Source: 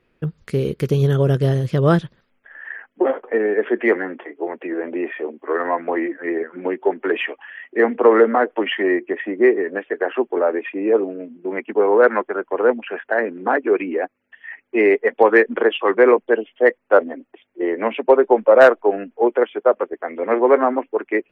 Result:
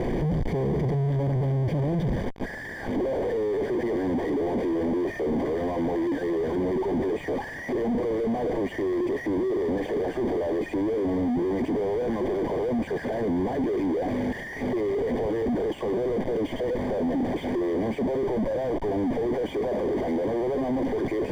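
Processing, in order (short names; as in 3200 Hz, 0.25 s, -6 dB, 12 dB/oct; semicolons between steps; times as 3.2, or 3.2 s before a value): delta modulation 32 kbps, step -18 dBFS; in parallel at -1.5 dB: negative-ratio compressor -23 dBFS, ratio -1; on the sum: Schmitt trigger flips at -21.5 dBFS; running mean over 33 samples; gain -8 dB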